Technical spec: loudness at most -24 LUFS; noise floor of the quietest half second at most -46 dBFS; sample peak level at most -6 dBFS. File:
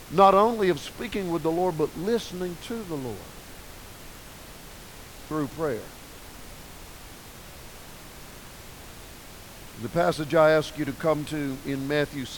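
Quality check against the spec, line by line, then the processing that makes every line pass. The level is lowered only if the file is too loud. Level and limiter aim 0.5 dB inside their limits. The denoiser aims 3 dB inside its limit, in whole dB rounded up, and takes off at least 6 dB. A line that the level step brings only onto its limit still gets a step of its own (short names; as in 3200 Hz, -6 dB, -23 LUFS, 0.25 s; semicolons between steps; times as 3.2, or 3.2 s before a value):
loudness -25.5 LUFS: OK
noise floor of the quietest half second -44 dBFS: fail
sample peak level -5.5 dBFS: fail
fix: denoiser 6 dB, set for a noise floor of -44 dBFS; limiter -6.5 dBFS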